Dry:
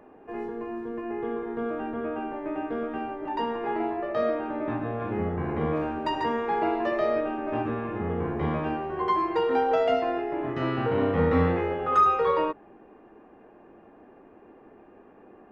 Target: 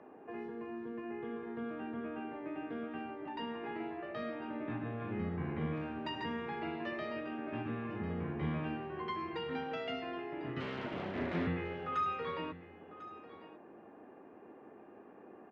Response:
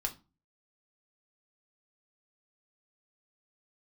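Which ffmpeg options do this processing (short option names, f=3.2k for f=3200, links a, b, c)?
-filter_complex "[0:a]acrossover=split=240|1800[a][b][c];[b]acompressor=threshold=-43dB:ratio=4[d];[a][d][c]amix=inputs=3:normalize=0,asettb=1/sr,asplit=3[e][f][g];[e]atrim=end=10.604[h];[f]atrim=start=10.6:end=11.47,asetpts=PTS-STARTPTS,afade=t=in:d=0.004:c=qsin,afade=t=out:st=0.866:d=0.004:c=qsin,aeval=exprs='abs(val(0))':c=same[i];[g]atrim=start=11.466[j];[h][i]acrossfade=d=0.004:c1=hsin:c2=qsin[k];[k][j]acrossfade=d=0.004:c1=qsin:c2=hsin,highpass=120,lowpass=3.7k,aecho=1:1:1047:0.158,volume=-3dB"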